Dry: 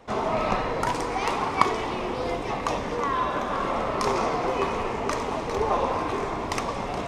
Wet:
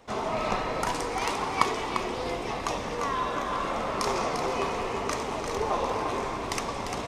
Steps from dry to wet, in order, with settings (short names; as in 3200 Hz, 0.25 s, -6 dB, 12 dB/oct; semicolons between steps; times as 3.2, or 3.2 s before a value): high shelf 3300 Hz +7.5 dB; on a send: echo 0.347 s -7 dB; on the sum: gain -4.5 dB